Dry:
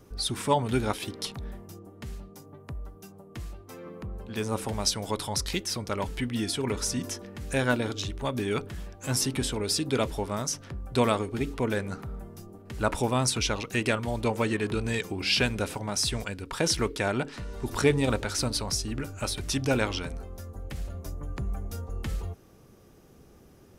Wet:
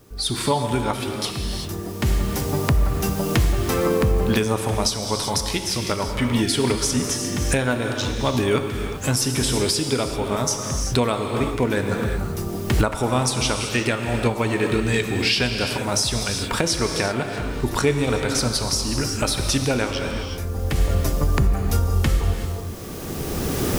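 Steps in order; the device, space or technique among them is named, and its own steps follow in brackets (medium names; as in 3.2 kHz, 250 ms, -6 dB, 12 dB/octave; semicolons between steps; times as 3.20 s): gated-style reverb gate 410 ms flat, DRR 4.5 dB; cheap recorder with automatic gain (white noise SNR 34 dB; recorder AGC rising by 14 dB/s); trim +1.5 dB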